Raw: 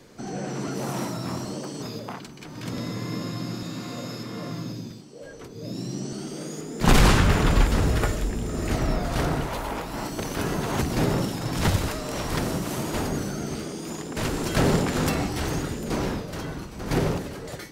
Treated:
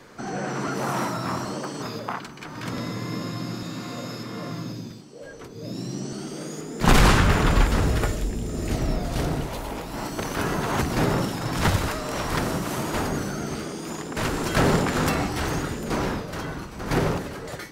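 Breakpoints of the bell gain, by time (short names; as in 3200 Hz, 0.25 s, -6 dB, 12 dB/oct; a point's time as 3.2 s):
bell 1300 Hz 1.7 oct
2.54 s +9.5 dB
3 s +3 dB
7.77 s +3 dB
8.3 s -5 dB
9.77 s -5 dB
10.21 s +5 dB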